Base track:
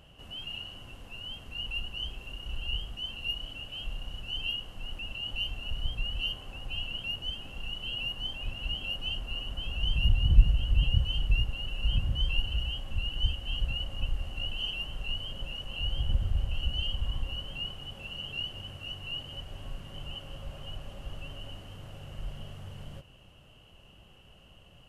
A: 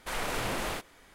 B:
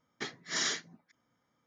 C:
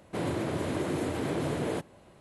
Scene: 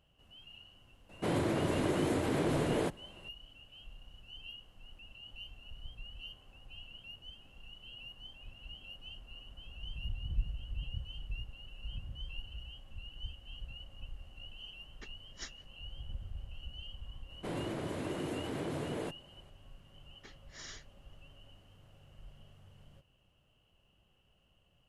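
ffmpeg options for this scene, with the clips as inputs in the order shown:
ffmpeg -i bed.wav -i cue0.wav -i cue1.wav -i cue2.wav -filter_complex "[3:a]asplit=2[link_01][link_02];[2:a]asplit=2[link_03][link_04];[0:a]volume=-15dB[link_05];[link_03]aeval=exprs='val(0)*pow(10,-33*(0.5-0.5*cos(2*PI*4.8*n/s))/20)':channel_layout=same[link_06];[link_01]atrim=end=2.2,asetpts=PTS-STARTPTS,volume=-0.5dB,afade=type=in:duration=0.004:curve=hsin,afade=type=out:start_time=2.196:duration=0.004:curve=hsin,adelay=1090[link_07];[link_06]atrim=end=1.66,asetpts=PTS-STARTPTS,volume=-11dB,afade=type=in:duration=0.004:curve=hsin,afade=type=out:start_time=1.656:duration=0.004:curve=hsin,adelay=14810[link_08];[link_02]atrim=end=2.2,asetpts=PTS-STARTPTS,volume=-7dB,afade=type=in:duration=0.004:curve=hsin,afade=type=out:start_time=2.196:duration=0.004:curve=hsin,adelay=17300[link_09];[link_04]atrim=end=1.66,asetpts=PTS-STARTPTS,volume=-17dB,afade=type=in:duration=0.004:curve=hsin,afade=type=out:start_time=1.656:duration=0.004:curve=hsin,adelay=20030[link_10];[link_05][link_07][link_08][link_09][link_10]amix=inputs=5:normalize=0" out.wav

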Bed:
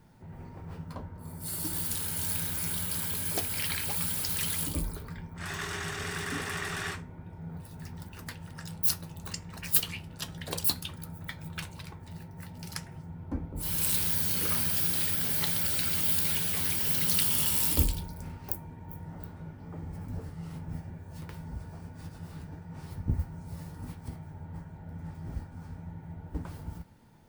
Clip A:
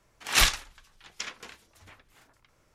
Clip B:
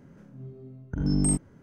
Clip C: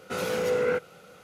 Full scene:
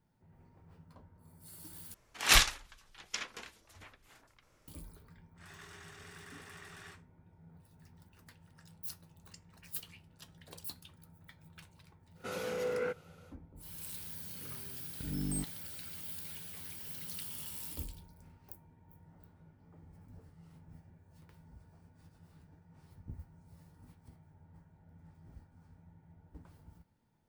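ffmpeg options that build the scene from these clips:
ffmpeg -i bed.wav -i cue0.wav -i cue1.wav -i cue2.wav -filter_complex "[0:a]volume=-17dB,asplit=2[link_01][link_02];[link_01]atrim=end=1.944[link_03];[1:a]atrim=end=2.74,asetpts=PTS-STARTPTS,volume=-2dB[link_04];[link_02]atrim=start=4.676[link_05];[3:a]atrim=end=1.23,asetpts=PTS-STARTPTS,volume=-9.5dB,afade=type=in:duration=0.1,afade=type=out:start_time=1.13:duration=0.1,adelay=12140[link_06];[2:a]atrim=end=1.62,asetpts=PTS-STARTPTS,volume=-12.5dB,afade=type=in:duration=0.004:curve=hsin,afade=type=out:start_time=1.616:duration=0.004:curve=hsin,adelay=14070[link_07];[link_03][link_04]acrossfade=duration=0.004:curve1=hsin:curve2=hsin[link_08];[link_08][link_05]acrossfade=duration=0.004:curve1=hsin:curve2=hsin[link_09];[link_09][link_06][link_07]amix=inputs=3:normalize=0" out.wav

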